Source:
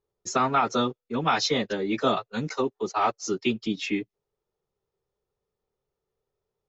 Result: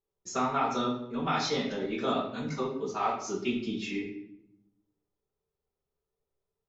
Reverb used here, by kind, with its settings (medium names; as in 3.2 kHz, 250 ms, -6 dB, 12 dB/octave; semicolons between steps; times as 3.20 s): simulated room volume 200 m³, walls mixed, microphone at 1.2 m; trim -9.5 dB